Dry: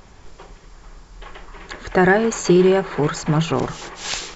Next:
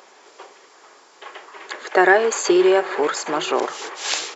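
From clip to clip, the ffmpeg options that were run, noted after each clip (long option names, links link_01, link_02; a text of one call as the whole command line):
ffmpeg -i in.wav -af "highpass=frequency=370:width=0.5412,highpass=frequency=370:width=1.3066,aecho=1:1:822:0.0944,volume=2.5dB" out.wav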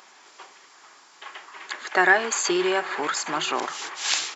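ffmpeg -i in.wav -af "equalizer=frequency=470:width_type=o:width=1.1:gain=-13" out.wav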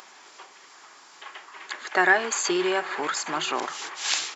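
ffmpeg -i in.wav -af "acompressor=mode=upward:threshold=-42dB:ratio=2.5,volume=-1.5dB" out.wav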